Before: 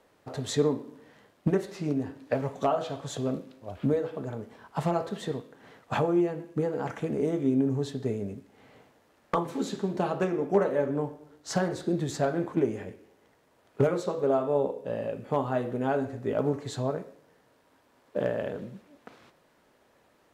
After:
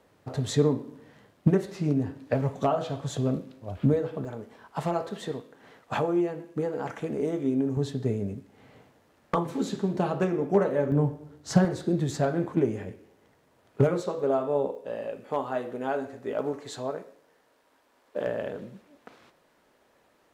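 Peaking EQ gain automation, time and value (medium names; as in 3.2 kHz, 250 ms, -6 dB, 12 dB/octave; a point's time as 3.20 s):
peaking EQ 110 Hz 2 oct
+7.5 dB
from 4.25 s -3.5 dB
from 7.77 s +5.5 dB
from 10.92 s +14.5 dB
from 11.65 s +5 dB
from 14.02 s -2.5 dB
from 14.75 s -12.5 dB
from 18.27 s -3.5 dB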